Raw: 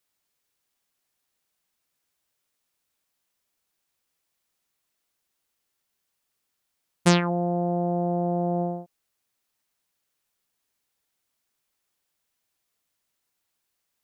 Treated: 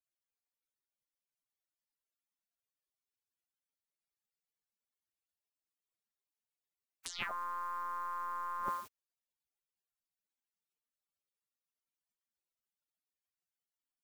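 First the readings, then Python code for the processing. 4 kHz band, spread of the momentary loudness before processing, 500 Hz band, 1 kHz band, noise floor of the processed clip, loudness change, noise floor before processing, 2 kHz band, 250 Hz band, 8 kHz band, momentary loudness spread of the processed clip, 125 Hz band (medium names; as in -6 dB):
-14.0 dB, 7 LU, -29.0 dB, -7.0 dB, under -85 dBFS, -14.5 dB, -79 dBFS, -10.0 dB, -36.0 dB, -13.5 dB, 7 LU, -38.0 dB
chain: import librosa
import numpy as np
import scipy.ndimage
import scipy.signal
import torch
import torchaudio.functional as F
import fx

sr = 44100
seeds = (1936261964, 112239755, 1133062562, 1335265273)

y = fx.over_compress(x, sr, threshold_db=-28.0, ratio=-0.5)
y = fx.spec_gate(y, sr, threshold_db=-25, keep='weak')
y = y * librosa.db_to_amplitude(17.0)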